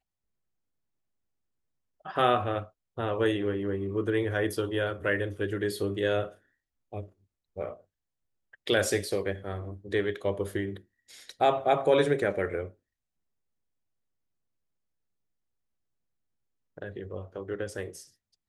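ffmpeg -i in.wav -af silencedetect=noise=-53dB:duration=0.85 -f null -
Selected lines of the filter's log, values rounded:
silence_start: 0.00
silence_end: 2.01 | silence_duration: 2.01
silence_start: 12.74
silence_end: 16.77 | silence_duration: 4.04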